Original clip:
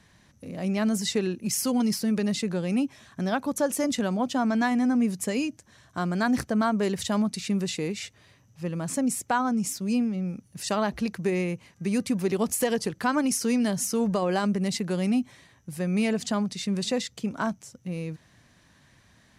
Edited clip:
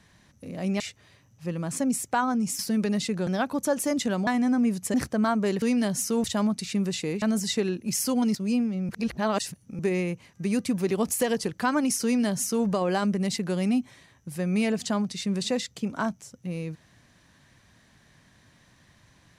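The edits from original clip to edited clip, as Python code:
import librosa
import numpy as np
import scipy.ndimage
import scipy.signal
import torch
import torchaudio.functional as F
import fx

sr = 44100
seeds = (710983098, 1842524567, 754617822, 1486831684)

y = fx.edit(x, sr, fx.swap(start_s=0.8, length_s=1.13, other_s=7.97, other_length_s=1.79),
    fx.cut(start_s=2.61, length_s=0.59),
    fx.cut(start_s=4.2, length_s=0.44),
    fx.cut(start_s=5.31, length_s=1.0),
    fx.reverse_span(start_s=10.3, length_s=0.9),
    fx.duplicate(start_s=13.45, length_s=0.62, to_s=6.99), tone=tone)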